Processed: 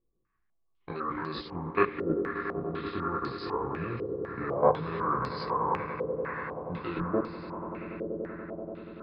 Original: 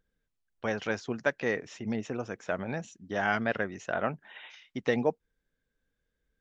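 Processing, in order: stepped spectrum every 50 ms; notch 850 Hz, Q 12; de-hum 52.84 Hz, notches 14; level quantiser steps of 14 dB; varispeed -29%; chorus voices 4, 0.81 Hz, delay 20 ms, depth 3.2 ms; swelling echo 96 ms, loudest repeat 8, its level -15 dB; stepped low-pass 4 Hz 500–4600 Hz; gain +8 dB

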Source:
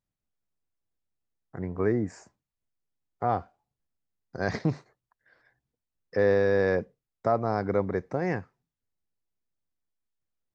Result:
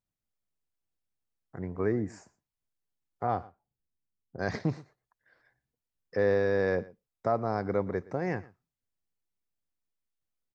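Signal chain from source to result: echo 0.118 s -21 dB; 3.27–4.39 low-pass opened by the level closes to 340 Hz, open at -24.5 dBFS; gain -3 dB

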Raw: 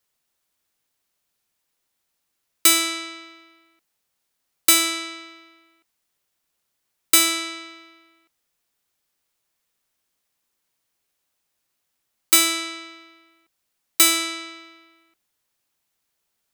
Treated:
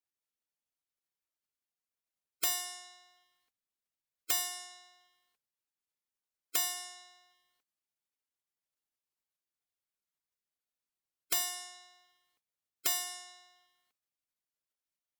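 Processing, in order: notches 60/120/180/240/300/360 Hz; spectral gate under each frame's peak -10 dB weak; speed mistake 44.1 kHz file played as 48 kHz; gain -7.5 dB

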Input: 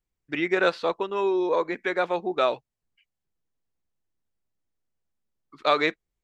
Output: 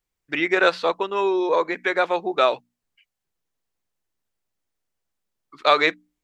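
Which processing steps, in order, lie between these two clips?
low shelf 380 Hz -7.5 dB; notches 60/120/180/240/300 Hz; gain +6 dB

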